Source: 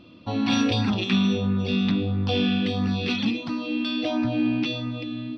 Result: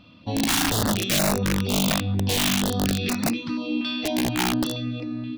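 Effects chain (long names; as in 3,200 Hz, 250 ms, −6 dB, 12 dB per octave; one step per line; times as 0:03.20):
wrap-around overflow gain 17 dB
notch on a step sequencer 4.2 Hz 380–3,200 Hz
level +1.5 dB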